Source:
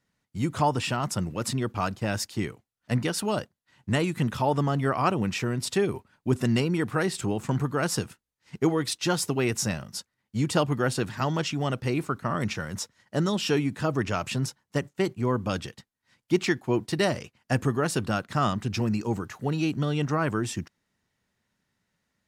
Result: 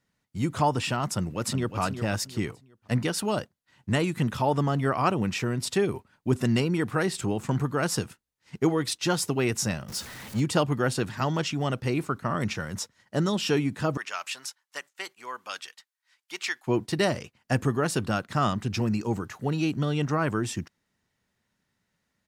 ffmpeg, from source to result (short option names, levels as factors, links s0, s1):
-filter_complex "[0:a]asplit=2[s0][s1];[s1]afade=t=in:st=1.07:d=0.01,afade=t=out:st=1.79:d=0.01,aecho=0:1:360|720|1080:0.354813|0.106444|0.0319332[s2];[s0][s2]amix=inputs=2:normalize=0,asettb=1/sr,asplit=3[s3][s4][s5];[s3]atrim=end=9.884[s6];[s4]atrim=start=9.88:end=10.4,asetpts=PTS-STARTPTS,afade=t=in:d=0.004:c=qsin,afade=t=out:st=0.516:d=0.004:c=qsin,aeval=exprs='val(0)+0.5*0.0168*sgn(val(0))':c=same[s7];[s5]atrim=start=10.396[s8];[s6][s7]acrossfade=d=0.004:c1=hsin:c2=qsin[s9];[s9][s8]acrossfade=d=0.004:c1=qsin:c2=hsin,asettb=1/sr,asplit=3[s10][s11][s12];[s10]atrim=end=13.974[s13];[s11]atrim=start=13.97:end=16.67,asetpts=PTS-STARTPTS,afade=t=in:d=0.004:c=qsin,afade=t=out:st=2.696:d=0.004:c=qsin,highpass=1200[s14];[s12]atrim=start=16.666[s15];[s13][s14]acrossfade=d=0.004:c1=hsin:c2=qsin[s16];[s16][s15]acrossfade=d=0.004:c1=qsin:c2=hsin"